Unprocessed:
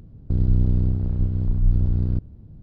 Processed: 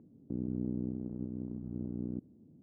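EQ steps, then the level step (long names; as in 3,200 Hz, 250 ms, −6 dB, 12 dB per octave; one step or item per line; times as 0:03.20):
four-pole ladder band-pass 320 Hz, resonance 40%
+4.0 dB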